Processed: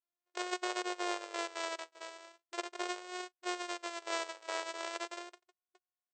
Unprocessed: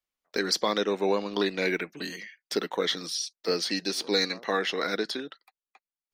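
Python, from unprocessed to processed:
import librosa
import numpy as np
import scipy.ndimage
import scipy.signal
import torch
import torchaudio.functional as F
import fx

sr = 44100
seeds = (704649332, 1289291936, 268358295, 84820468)

y = np.r_[np.sort(x[:len(x) // 128 * 128].reshape(-1, 128), axis=1).ravel(), x[len(x) // 128 * 128:]]
y = fx.vibrato(y, sr, rate_hz=0.39, depth_cents=87.0)
y = fx.brickwall_bandpass(y, sr, low_hz=350.0, high_hz=8500.0)
y = y * 10.0 ** (-8.5 / 20.0)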